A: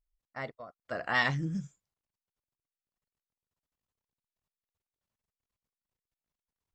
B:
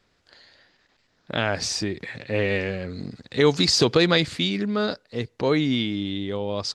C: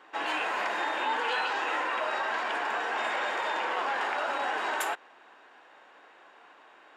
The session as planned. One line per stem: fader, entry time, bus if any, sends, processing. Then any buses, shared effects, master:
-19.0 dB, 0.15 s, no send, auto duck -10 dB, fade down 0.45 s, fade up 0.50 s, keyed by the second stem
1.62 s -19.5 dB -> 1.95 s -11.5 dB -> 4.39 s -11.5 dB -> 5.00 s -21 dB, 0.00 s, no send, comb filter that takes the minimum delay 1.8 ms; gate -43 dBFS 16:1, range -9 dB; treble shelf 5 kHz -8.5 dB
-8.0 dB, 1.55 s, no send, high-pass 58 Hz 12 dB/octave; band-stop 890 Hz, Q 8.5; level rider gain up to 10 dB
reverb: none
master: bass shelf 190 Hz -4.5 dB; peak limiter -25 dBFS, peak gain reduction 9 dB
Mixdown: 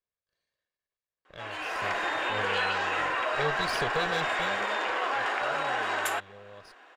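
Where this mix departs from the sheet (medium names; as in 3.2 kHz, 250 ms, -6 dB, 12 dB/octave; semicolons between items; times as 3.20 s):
stem A: muted; stem C: entry 1.55 s -> 1.25 s; master: missing peak limiter -25 dBFS, peak gain reduction 9 dB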